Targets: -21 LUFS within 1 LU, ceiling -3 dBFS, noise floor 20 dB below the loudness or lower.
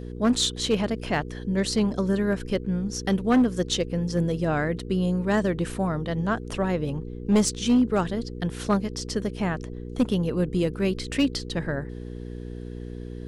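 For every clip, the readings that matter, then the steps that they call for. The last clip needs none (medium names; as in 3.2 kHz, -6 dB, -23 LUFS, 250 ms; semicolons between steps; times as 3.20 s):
clipped samples 0.5%; clipping level -14.5 dBFS; hum 60 Hz; highest harmonic 480 Hz; hum level -33 dBFS; loudness -25.5 LUFS; peak level -14.5 dBFS; loudness target -21.0 LUFS
-> clip repair -14.5 dBFS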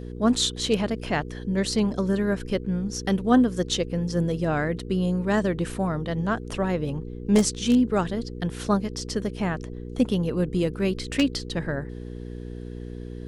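clipped samples 0.0%; hum 60 Hz; highest harmonic 480 Hz; hum level -33 dBFS
-> de-hum 60 Hz, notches 8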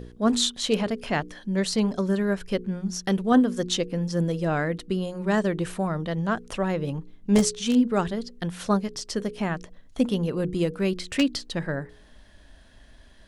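hum not found; loudness -26.0 LUFS; peak level -6.5 dBFS; loudness target -21.0 LUFS
-> trim +5 dB; peak limiter -3 dBFS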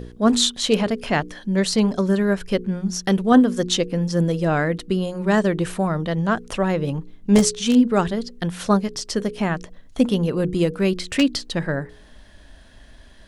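loudness -21.0 LUFS; peak level -3.0 dBFS; noise floor -46 dBFS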